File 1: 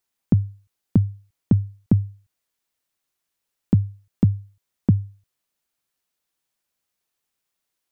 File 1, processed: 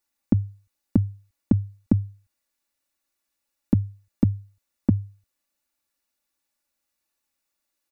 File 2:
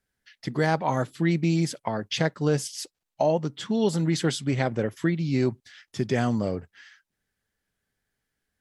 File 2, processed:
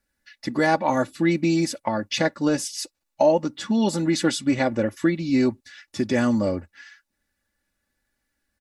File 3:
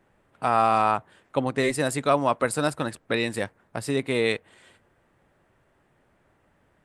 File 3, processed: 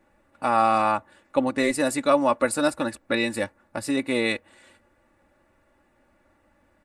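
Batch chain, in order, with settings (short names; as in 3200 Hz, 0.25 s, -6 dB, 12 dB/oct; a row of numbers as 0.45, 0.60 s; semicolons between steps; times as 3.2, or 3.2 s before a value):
notch 3200 Hz, Q 11; comb 3.5 ms, depth 70%; normalise peaks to -6 dBFS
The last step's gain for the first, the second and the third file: -2.0, +2.5, -0.5 dB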